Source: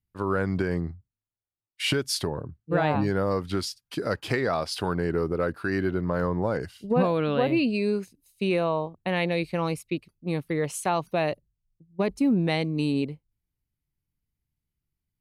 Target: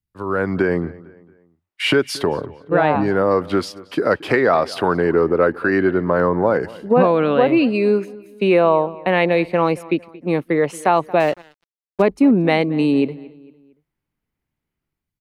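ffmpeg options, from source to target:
-filter_complex "[0:a]acrossover=split=220|2600[s0][s1][s2];[s1]dynaudnorm=f=110:g=7:m=4.73[s3];[s0][s3][s2]amix=inputs=3:normalize=0,asplit=2[s4][s5];[s5]adelay=227,lowpass=f=3700:p=1,volume=0.0944,asplit=2[s6][s7];[s7]adelay=227,lowpass=f=3700:p=1,volume=0.42,asplit=2[s8][s9];[s9]adelay=227,lowpass=f=3700:p=1,volume=0.42[s10];[s4][s6][s8][s10]amix=inputs=4:normalize=0,asettb=1/sr,asplit=3[s11][s12][s13];[s11]atrim=end=11.204[s14];[s12]atrim=start=11.2:end=12.02,asetpts=PTS-STARTPTS,afade=t=in:d=0.004:c=qsin,afade=t=out:st=0.816:d=0.004:c=qsin,aeval=exprs='sgn(val(0))*max(abs(val(0))-0.0266,0)':c=same[s15];[s13]atrim=start=12.016[s16];[s14][s15]acrossfade=d=0.004:c1=hsin:c2=qsin[s17];[s17][s16]acrossfade=d=0.004:c1=qsin:c2=hsin,volume=0.891"

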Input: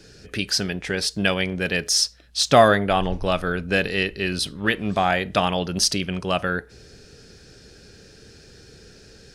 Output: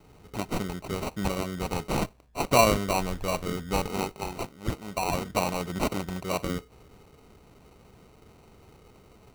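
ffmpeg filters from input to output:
-filter_complex "[0:a]asettb=1/sr,asplit=3[s0][s1][s2];[s0]atrim=end=4.124[s3];[s1]atrim=start=4.12:end=5.12,asetpts=PTS-STARTPTS,afade=t=in:d=0.004:c=qsin,afade=t=out:st=0.996:d=0.004:c=qsin,lowshelf=f=340:g=-11.5[s4];[s2]atrim=start=5.116[s5];[s3][s4]acrossfade=d=0.004:c1=hsin:c2=qsin[s6];[s6][s5]acrossfade=d=0.004:c1=qsin:c2=hsin,acrusher=samples=26:mix=1:aa=0.000001,volume=0.473"

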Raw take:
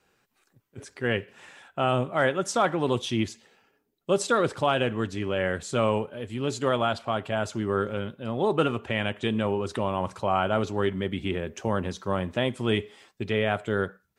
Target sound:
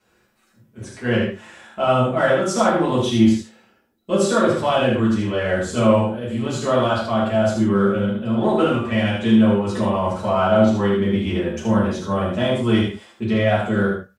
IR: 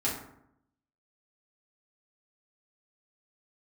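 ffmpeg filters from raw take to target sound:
-filter_complex "[0:a]asplit=2[s0][s1];[s1]asoftclip=type=tanh:threshold=0.0422,volume=0.398[s2];[s0][s2]amix=inputs=2:normalize=0,aecho=1:1:76:0.562[s3];[1:a]atrim=start_sample=2205,atrim=end_sample=3969,asetrate=35280,aresample=44100[s4];[s3][s4]afir=irnorm=-1:irlink=0,volume=0.562"

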